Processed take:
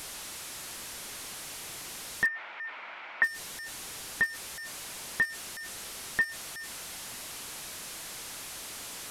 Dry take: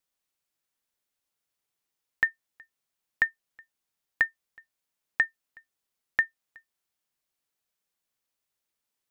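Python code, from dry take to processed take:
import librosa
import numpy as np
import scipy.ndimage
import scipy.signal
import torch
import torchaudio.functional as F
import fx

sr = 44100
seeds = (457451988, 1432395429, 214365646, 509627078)

y = fx.delta_mod(x, sr, bps=64000, step_db=-39.0)
y = 10.0 ** (-21.5 / 20.0) * np.tanh(y / 10.0 ** (-21.5 / 20.0))
y = fx.cabinet(y, sr, low_hz=430.0, low_slope=12, high_hz=2800.0, hz=(430.0, 650.0, 930.0, 1400.0, 2200.0), db=(-5, 4, 7, 7, 8), at=(2.26, 3.23))
y = y * 10.0 ** (5.0 / 20.0)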